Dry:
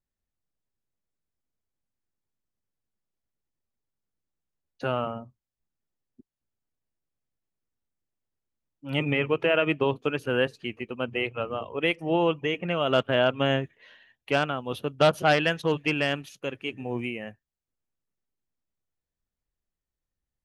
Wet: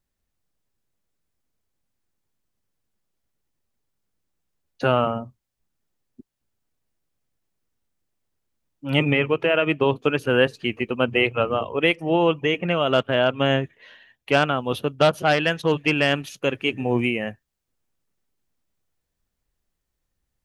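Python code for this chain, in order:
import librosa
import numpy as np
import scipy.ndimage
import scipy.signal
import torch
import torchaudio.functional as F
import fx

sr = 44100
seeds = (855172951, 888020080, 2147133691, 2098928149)

y = fx.rider(x, sr, range_db=4, speed_s=0.5)
y = F.gain(torch.from_numpy(y), 5.5).numpy()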